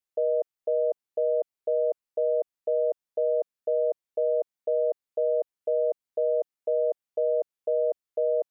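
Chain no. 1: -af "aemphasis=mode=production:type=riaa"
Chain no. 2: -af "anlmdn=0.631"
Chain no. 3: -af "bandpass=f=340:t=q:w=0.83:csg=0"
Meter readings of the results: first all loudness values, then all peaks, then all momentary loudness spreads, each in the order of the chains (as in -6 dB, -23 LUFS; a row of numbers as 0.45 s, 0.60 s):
-30.5 LUFS, -28.0 LUFS, -30.0 LUFS; -20.5 dBFS, -18.0 dBFS, -20.5 dBFS; 2 LU, 2 LU, 2 LU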